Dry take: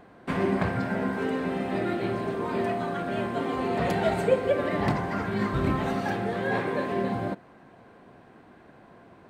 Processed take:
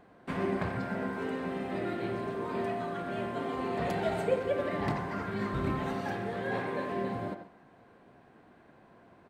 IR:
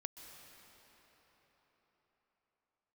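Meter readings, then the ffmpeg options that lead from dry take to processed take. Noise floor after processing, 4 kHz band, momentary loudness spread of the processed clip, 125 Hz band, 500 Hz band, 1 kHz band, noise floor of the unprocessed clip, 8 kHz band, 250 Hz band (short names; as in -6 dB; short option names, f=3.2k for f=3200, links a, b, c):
-59 dBFS, -6.0 dB, 4 LU, -6.5 dB, -5.5 dB, -5.5 dB, -53 dBFS, n/a, -6.5 dB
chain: -filter_complex "[0:a]asplit=2[a][b];[b]adelay=90,highpass=300,lowpass=3.4k,asoftclip=type=hard:threshold=-19dB,volume=-8dB[c];[a][c]amix=inputs=2:normalize=0[d];[1:a]atrim=start_sample=2205,atrim=end_sample=6174[e];[d][e]afir=irnorm=-1:irlink=0,volume=-2dB"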